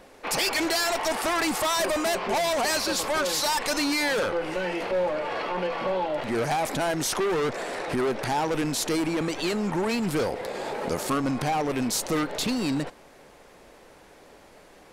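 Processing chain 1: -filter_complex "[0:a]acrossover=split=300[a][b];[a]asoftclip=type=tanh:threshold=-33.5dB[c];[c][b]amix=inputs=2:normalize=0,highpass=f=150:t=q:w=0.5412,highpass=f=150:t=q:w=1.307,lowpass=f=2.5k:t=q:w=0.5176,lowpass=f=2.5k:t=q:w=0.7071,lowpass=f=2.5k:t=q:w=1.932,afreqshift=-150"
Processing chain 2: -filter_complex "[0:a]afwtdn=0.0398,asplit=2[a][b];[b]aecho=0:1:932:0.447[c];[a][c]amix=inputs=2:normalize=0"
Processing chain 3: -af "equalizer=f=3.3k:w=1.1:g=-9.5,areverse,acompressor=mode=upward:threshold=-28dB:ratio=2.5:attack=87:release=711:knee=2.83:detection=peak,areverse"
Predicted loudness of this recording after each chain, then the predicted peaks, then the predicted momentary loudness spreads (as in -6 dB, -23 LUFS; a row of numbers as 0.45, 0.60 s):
-28.5, -27.5, -27.5 LUFS; -14.0, -14.0, -2.5 dBFS; 5, 5, 13 LU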